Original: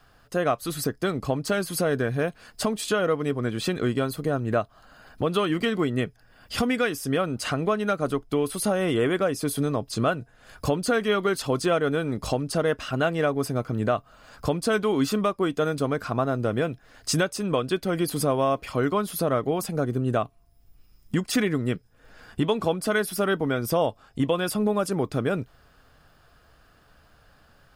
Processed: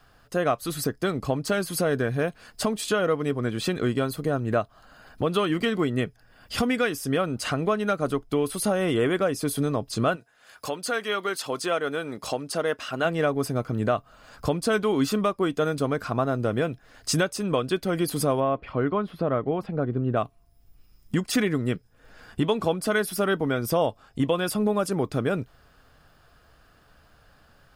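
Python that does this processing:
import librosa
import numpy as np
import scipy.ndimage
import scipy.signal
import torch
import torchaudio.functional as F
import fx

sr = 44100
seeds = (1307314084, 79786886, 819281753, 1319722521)

y = fx.highpass(x, sr, hz=fx.line((10.15, 1100.0), (13.04, 350.0)), slope=6, at=(10.15, 13.04), fade=0.02)
y = fx.air_absorb(y, sr, metres=390.0, at=(18.39, 20.16), fade=0.02)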